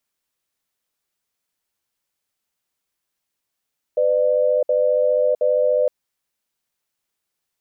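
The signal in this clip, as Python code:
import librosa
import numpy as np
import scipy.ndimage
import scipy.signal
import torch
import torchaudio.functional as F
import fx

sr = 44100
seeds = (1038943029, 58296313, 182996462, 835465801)

y = fx.cadence(sr, length_s=1.91, low_hz=504.0, high_hz=599.0, on_s=0.66, off_s=0.06, level_db=-17.5)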